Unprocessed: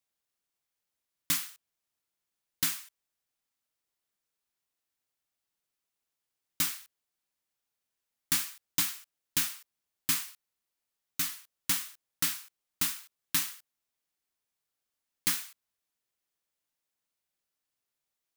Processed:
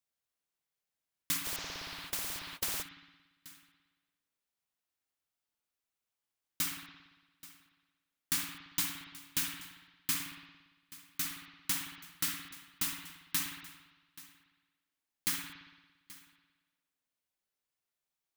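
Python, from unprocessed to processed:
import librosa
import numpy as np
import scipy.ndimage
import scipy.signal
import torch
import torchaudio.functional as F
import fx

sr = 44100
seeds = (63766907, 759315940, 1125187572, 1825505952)

p1 = x + fx.echo_single(x, sr, ms=830, db=-19.0, dry=0)
p2 = fx.rev_spring(p1, sr, rt60_s=1.2, pass_ms=(57,), chirp_ms=45, drr_db=2.5)
p3 = fx.spectral_comp(p2, sr, ratio=10.0, at=(1.44, 2.81), fade=0.02)
y = p3 * librosa.db_to_amplitude(-4.5)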